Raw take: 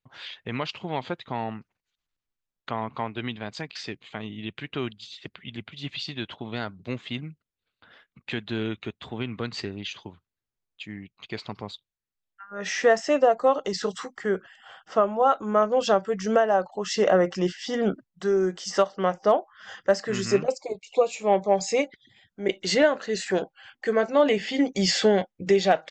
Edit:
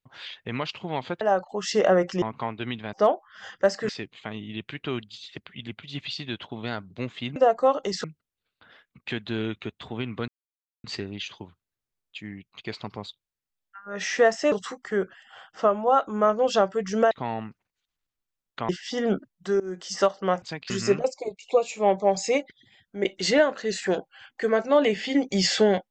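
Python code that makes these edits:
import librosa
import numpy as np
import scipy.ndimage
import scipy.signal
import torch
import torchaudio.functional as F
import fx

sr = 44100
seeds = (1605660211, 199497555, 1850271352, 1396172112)

y = fx.edit(x, sr, fx.swap(start_s=1.21, length_s=1.58, other_s=16.44, other_length_s=1.01),
    fx.swap(start_s=3.5, length_s=0.28, other_s=19.18, other_length_s=0.96),
    fx.insert_silence(at_s=9.49, length_s=0.56),
    fx.move(start_s=13.17, length_s=0.68, to_s=7.25),
    fx.fade_in_from(start_s=18.36, length_s=0.29, floor_db=-21.5), tone=tone)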